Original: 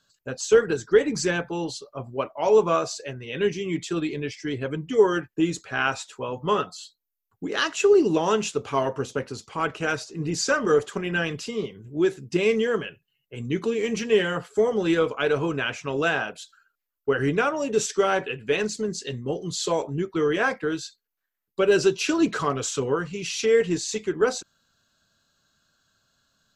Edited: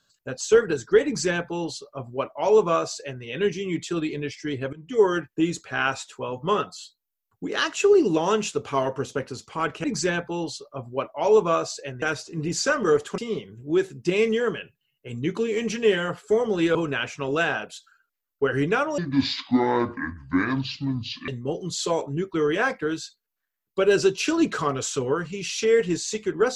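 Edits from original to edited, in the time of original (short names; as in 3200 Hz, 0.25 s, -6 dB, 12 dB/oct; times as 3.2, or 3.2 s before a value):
1.05–3.23 copy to 9.84
4.73–5.04 fade in, from -21.5 dB
11–11.45 cut
15.02–15.41 cut
17.64–19.09 speed 63%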